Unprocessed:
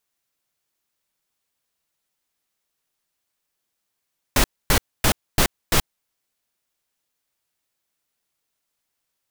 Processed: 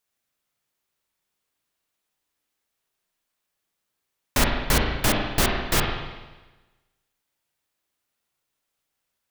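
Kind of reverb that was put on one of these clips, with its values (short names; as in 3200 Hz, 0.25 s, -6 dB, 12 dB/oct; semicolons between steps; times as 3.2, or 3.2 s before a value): spring tank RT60 1.2 s, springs 36/49 ms, chirp 20 ms, DRR 0 dB; gain -2.5 dB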